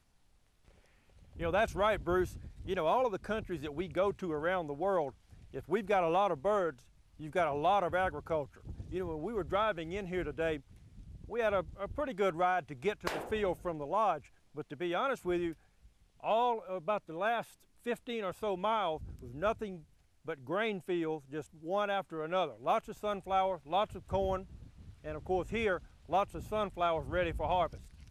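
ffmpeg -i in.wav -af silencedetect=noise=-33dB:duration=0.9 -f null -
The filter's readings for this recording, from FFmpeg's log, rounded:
silence_start: 0.00
silence_end: 1.41 | silence_duration: 1.41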